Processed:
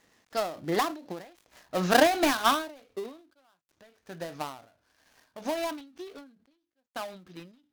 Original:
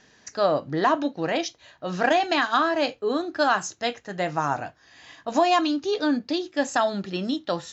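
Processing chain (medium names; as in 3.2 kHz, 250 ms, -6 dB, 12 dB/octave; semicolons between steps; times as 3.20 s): dead-time distortion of 0.15 ms; Doppler pass-by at 1.84 s, 25 m/s, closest 21 m; peaking EQ 140 Hz -8 dB 0.2 oct; endings held to a fixed fall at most 110 dB/s; trim +2.5 dB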